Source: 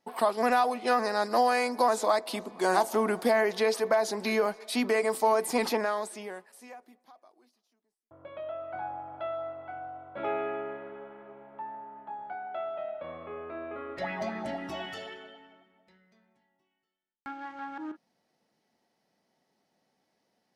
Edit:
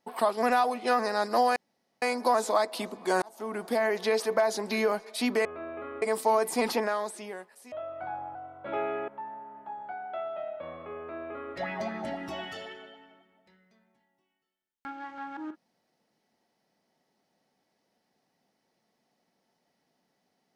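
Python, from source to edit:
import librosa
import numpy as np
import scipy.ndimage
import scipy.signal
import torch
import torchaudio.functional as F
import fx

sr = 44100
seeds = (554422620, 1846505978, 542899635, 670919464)

y = fx.edit(x, sr, fx.insert_room_tone(at_s=1.56, length_s=0.46),
    fx.fade_in_span(start_s=2.76, length_s=1.09, curve='qsin'),
    fx.cut(start_s=6.69, length_s=1.75),
    fx.cut(start_s=9.07, length_s=0.79),
    fx.cut(start_s=10.59, length_s=0.9),
    fx.duplicate(start_s=13.39, length_s=0.57, to_s=4.99), tone=tone)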